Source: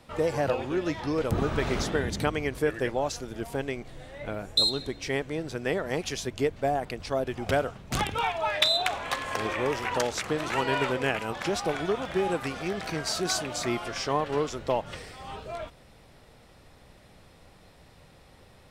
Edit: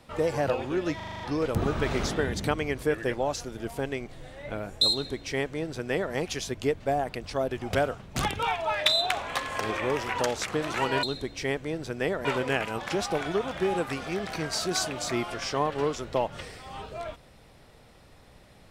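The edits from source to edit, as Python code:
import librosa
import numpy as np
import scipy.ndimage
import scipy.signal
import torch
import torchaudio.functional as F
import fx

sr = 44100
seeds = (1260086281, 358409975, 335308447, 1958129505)

y = fx.edit(x, sr, fx.stutter(start_s=0.96, slice_s=0.04, count=7),
    fx.duplicate(start_s=4.68, length_s=1.22, to_s=10.79), tone=tone)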